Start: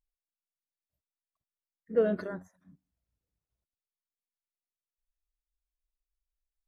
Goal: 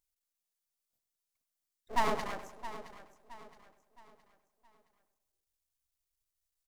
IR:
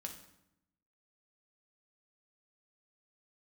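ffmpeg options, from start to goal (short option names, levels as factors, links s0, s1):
-filter_complex "[0:a]asplit=2[s0][s1];[s1]adelay=100,lowpass=f=1300:p=1,volume=0.316,asplit=2[s2][s3];[s3]adelay=100,lowpass=f=1300:p=1,volume=0.54,asplit=2[s4][s5];[s5]adelay=100,lowpass=f=1300:p=1,volume=0.54,asplit=2[s6][s7];[s7]adelay=100,lowpass=f=1300:p=1,volume=0.54,asplit=2[s8][s9];[s9]adelay=100,lowpass=f=1300:p=1,volume=0.54,asplit=2[s10][s11];[s11]adelay=100,lowpass=f=1300:p=1,volume=0.54[s12];[s2][s4][s6][s8][s10][s12]amix=inputs=6:normalize=0[s13];[s0][s13]amix=inputs=2:normalize=0,aeval=exprs='abs(val(0))':c=same,bass=f=250:g=-8,treble=f=4000:g=8,asplit=2[s14][s15];[s15]aecho=0:1:668|1336|2004|2672:0.2|0.0778|0.0303|0.0118[s16];[s14][s16]amix=inputs=2:normalize=0,volume=1.26"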